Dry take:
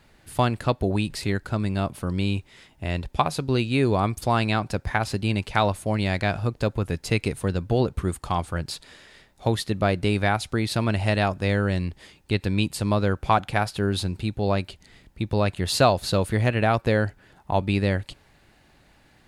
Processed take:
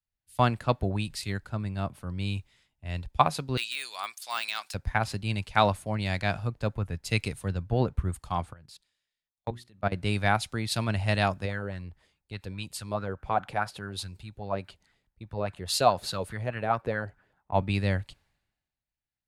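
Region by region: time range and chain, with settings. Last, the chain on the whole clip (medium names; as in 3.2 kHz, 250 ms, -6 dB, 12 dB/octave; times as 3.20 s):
3.57–4.74 s: high-pass 1.1 kHz + de-esser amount 90% + treble shelf 2.2 kHz +10.5 dB
8.53–9.92 s: level held to a coarse grid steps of 20 dB + hum notches 60/120/180/240/300/360 Hz
11.45–17.52 s: compression 1.5:1, threshold -32 dBFS + sweeping bell 4.8 Hz 400–1600 Hz +10 dB
whole clip: peaking EQ 360 Hz -5.5 dB 1.2 oct; three bands expanded up and down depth 100%; trim -4 dB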